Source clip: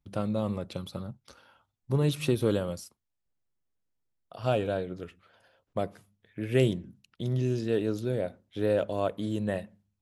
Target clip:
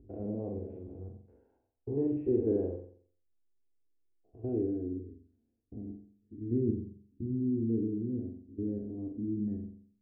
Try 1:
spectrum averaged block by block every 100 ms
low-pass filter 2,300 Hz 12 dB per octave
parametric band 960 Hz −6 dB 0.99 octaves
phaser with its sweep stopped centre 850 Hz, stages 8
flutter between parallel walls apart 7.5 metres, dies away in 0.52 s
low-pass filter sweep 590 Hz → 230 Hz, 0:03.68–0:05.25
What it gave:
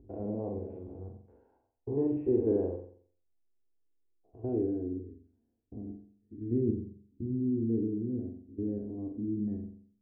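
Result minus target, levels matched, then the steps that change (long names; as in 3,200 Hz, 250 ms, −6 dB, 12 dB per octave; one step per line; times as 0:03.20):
1,000 Hz band +4.5 dB
change: parametric band 960 Hz −15 dB 0.99 octaves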